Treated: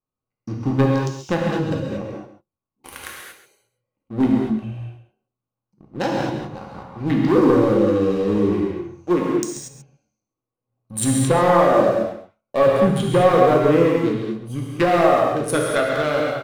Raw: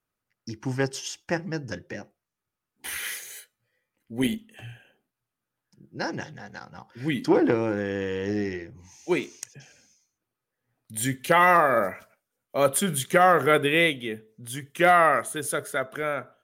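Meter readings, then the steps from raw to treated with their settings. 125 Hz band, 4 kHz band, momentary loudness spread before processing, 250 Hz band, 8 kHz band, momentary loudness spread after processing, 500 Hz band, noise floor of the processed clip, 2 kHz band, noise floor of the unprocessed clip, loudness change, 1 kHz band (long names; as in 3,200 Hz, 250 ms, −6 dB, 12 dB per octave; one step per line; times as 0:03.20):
+10.5 dB, 0.0 dB, 21 LU, +9.5 dB, +1.5 dB, 19 LU, +8.0 dB, below −85 dBFS, −2.5 dB, below −85 dBFS, +5.5 dB, +2.5 dB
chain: adaptive Wiener filter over 25 samples
treble cut that deepens with the level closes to 600 Hz, closed at −18.5 dBFS
high-shelf EQ 5,000 Hz +9 dB
leveller curve on the samples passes 2
in parallel at −5 dB: hard clipping −20 dBFS, distortion −9 dB
on the sum: hollow resonant body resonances 1,100/3,800 Hz, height 10 dB, ringing for 50 ms
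on a send: single-tap delay 135 ms −12.5 dB
on the sum: reverb whose tail is shaped and stops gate 260 ms flat, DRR −2 dB
level −3.5 dB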